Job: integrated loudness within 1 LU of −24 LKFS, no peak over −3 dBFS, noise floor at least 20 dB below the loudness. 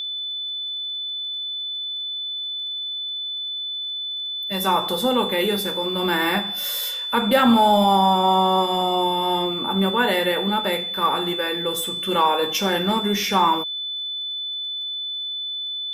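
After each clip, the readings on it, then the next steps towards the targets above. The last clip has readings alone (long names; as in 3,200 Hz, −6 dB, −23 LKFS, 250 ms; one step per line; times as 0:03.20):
crackle rate 34 per second; interfering tone 3,500 Hz; level of the tone −26 dBFS; integrated loudness −21.5 LKFS; sample peak −6.0 dBFS; target loudness −24.0 LKFS
→ click removal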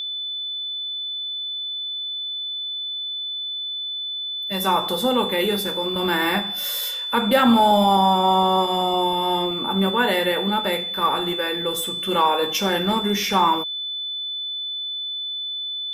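crackle rate 0.19 per second; interfering tone 3,500 Hz; level of the tone −26 dBFS
→ notch filter 3,500 Hz, Q 30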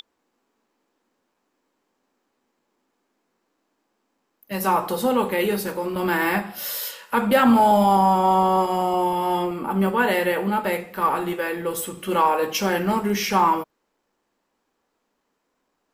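interfering tone none found; integrated loudness −21.5 LKFS; sample peak −6.0 dBFS; target loudness −24.0 LKFS
→ level −2.5 dB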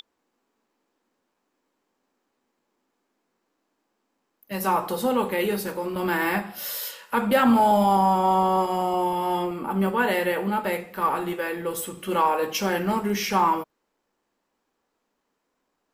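integrated loudness −24.0 LKFS; sample peak −8.5 dBFS; background noise floor −77 dBFS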